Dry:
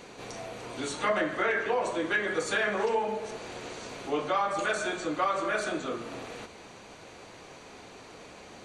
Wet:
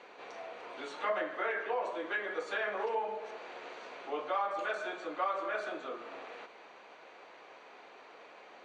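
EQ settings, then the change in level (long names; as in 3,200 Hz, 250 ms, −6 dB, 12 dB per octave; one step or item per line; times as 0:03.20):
high-pass filter 520 Hz 12 dB per octave
low-pass filter 2,700 Hz 12 dB per octave
dynamic equaliser 1,800 Hz, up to −4 dB, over −42 dBFS, Q 0.87
−2.5 dB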